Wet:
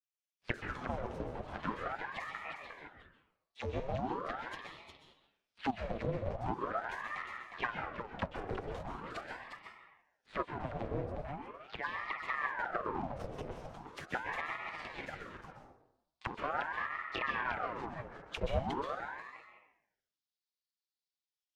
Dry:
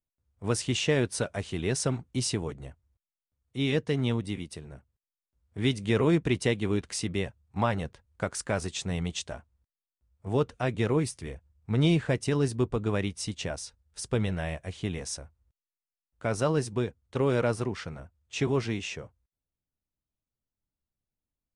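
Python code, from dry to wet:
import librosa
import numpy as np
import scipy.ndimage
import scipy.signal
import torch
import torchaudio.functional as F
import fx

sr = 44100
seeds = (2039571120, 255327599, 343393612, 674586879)

p1 = fx.lower_of_two(x, sr, delay_ms=6.5)
p2 = fx.weighting(p1, sr, curve='A')
p3 = fx.rider(p2, sr, range_db=4, speed_s=0.5)
p4 = fx.cheby_harmonics(p3, sr, harmonics=(4, 5, 7, 8), levels_db=(-13, -20, -24, -11), full_scale_db=-13.5)
p5 = fx.auto_wah(p4, sr, base_hz=250.0, top_hz=4400.0, q=3.8, full_db=-28.0, direction='down')
p6 = fx.granulator(p5, sr, seeds[0], grain_ms=100.0, per_s=20.0, spray_ms=13.0, spread_st=0)
p7 = p6 + fx.echo_single(p6, sr, ms=358, db=-7.0, dry=0)
p8 = fx.rev_plate(p7, sr, seeds[1], rt60_s=0.78, hf_ratio=0.6, predelay_ms=115, drr_db=3.5)
p9 = fx.ring_lfo(p8, sr, carrier_hz=880.0, swing_pct=80, hz=0.41)
y = p9 * 10.0 ** (7.5 / 20.0)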